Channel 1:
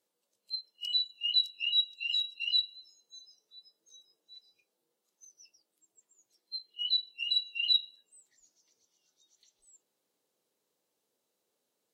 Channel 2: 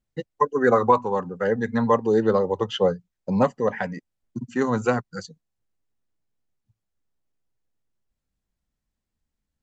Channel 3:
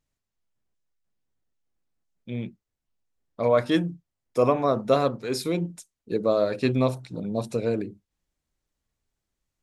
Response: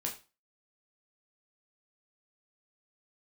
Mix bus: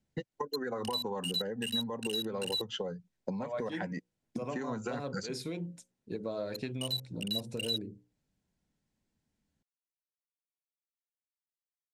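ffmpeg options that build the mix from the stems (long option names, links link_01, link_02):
-filter_complex "[0:a]equalizer=frequency=4200:width_type=o:width=2.4:gain=7,aeval=exprs='val(0)*gte(abs(val(0)),0.0562)':channel_layout=same,volume=-6.5dB[link_01];[1:a]highpass=140,alimiter=limit=-17dB:level=0:latency=1:release=204,volume=1dB[link_02];[2:a]bandreject=frequency=60:width_type=h:width=6,bandreject=frequency=120:width_type=h:width=6,bandreject=frequency=180:width_type=h:width=6,bandreject=frequency=240:width_type=h:width=6,bandreject=frequency=300:width_type=h:width=6,bandreject=frequency=360:width_type=h:width=6,bandreject=frequency=420:width_type=h:width=6,bandreject=frequency=480:width_type=h:width=6,bandreject=frequency=540:width_type=h:width=6,volume=-9dB[link_03];[link_02][link_03]amix=inputs=2:normalize=0,equalizer=frequency=120:width=0.34:gain=7.5,acompressor=threshold=-27dB:ratio=6,volume=0dB[link_04];[link_01][link_04]amix=inputs=2:normalize=0,lowpass=9800,acrossover=split=790|5200[link_05][link_06][link_07];[link_05]acompressor=threshold=-36dB:ratio=4[link_08];[link_06]acompressor=threshold=-38dB:ratio=4[link_09];[link_07]acompressor=threshold=-38dB:ratio=4[link_10];[link_08][link_09][link_10]amix=inputs=3:normalize=0,bandreject=frequency=1200:width=7.4"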